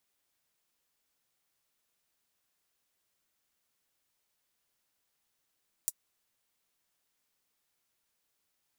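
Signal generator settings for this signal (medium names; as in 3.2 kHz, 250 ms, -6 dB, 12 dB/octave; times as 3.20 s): closed hi-hat, high-pass 7.6 kHz, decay 0.05 s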